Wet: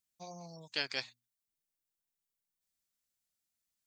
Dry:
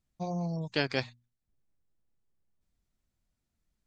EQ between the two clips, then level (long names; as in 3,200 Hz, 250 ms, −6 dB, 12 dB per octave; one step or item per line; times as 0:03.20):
spectral tilt +4 dB per octave
−8.5 dB